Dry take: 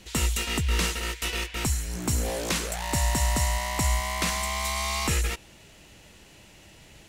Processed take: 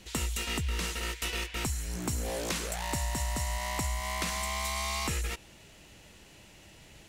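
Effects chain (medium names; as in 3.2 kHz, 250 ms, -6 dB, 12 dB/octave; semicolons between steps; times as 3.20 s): compression, threshold -26 dBFS, peak gain reduction 6 dB; trim -2.5 dB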